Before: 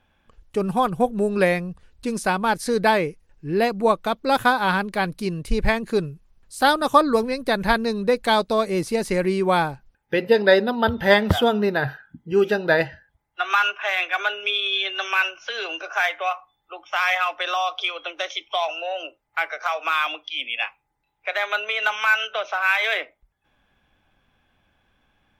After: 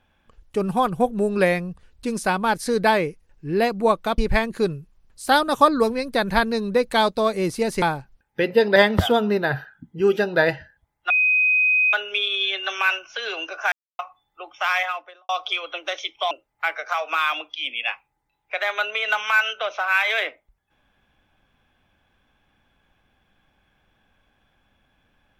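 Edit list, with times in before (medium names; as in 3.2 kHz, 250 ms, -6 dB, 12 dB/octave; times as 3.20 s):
4.18–5.51 s: delete
9.15–9.56 s: delete
10.50–11.08 s: delete
13.42–14.25 s: bleep 2.51 kHz -15 dBFS
16.04–16.31 s: mute
17.01–17.61 s: studio fade out
18.63–19.05 s: delete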